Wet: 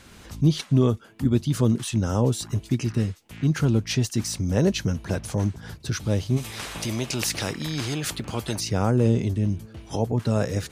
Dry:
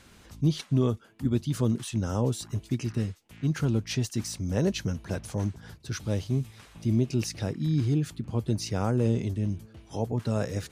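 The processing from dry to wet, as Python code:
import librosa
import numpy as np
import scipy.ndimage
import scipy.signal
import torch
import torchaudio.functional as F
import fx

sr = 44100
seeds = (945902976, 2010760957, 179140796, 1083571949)

y = fx.recorder_agc(x, sr, target_db=-22.5, rise_db_per_s=11.0, max_gain_db=30)
y = fx.spectral_comp(y, sr, ratio=2.0, at=(6.36, 8.59), fade=0.02)
y = y * 10.0 ** (5.0 / 20.0)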